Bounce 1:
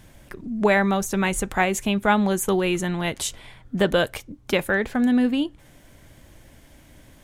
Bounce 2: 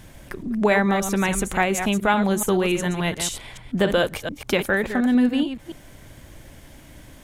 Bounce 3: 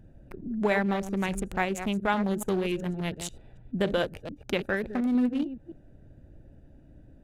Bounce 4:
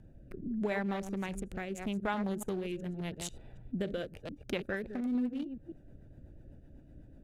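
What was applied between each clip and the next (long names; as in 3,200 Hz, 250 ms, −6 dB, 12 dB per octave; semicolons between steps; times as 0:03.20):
delay that plays each chunk backwards 143 ms, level −9 dB; in parallel at +1 dB: downward compressor, threshold −30 dBFS, peak gain reduction 15 dB; on the sum: level −2 dB
adaptive Wiener filter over 41 samples; level −6 dB
downward compressor 2 to 1, threshold −35 dBFS, peak gain reduction 8 dB; rotating-speaker cabinet horn 0.8 Hz, later 8 Hz, at 0:04.02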